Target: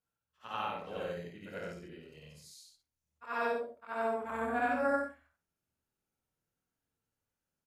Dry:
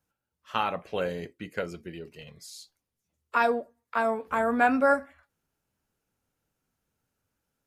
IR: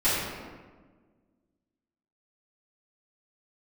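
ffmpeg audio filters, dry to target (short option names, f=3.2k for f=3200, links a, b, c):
-af "afftfilt=real='re':imag='-im':win_size=8192:overlap=0.75,aecho=1:1:11|25|53:0.158|0.531|0.668,volume=-6.5dB"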